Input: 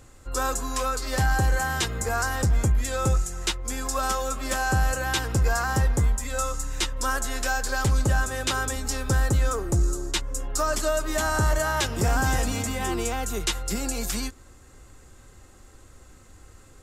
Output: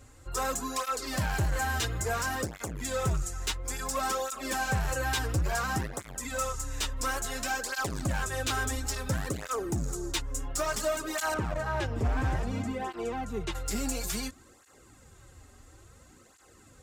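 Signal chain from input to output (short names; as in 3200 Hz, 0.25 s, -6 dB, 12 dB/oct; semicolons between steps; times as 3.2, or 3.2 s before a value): 11.34–13.55 LPF 1100 Hz 6 dB/oct; overloaded stage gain 22.5 dB; tape flanging out of phase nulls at 0.58 Hz, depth 6.2 ms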